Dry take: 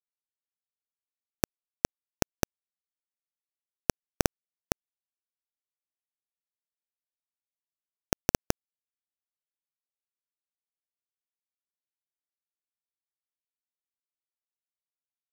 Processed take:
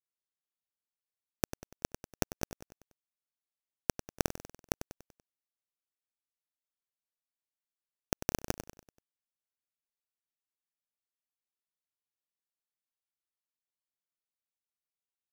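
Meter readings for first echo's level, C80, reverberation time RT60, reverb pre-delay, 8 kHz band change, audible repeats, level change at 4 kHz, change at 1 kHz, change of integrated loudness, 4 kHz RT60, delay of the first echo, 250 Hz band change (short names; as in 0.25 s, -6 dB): -12.5 dB, none, none, none, -4.5 dB, 4, -4.5 dB, -4.5 dB, -5.0 dB, none, 96 ms, -4.5 dB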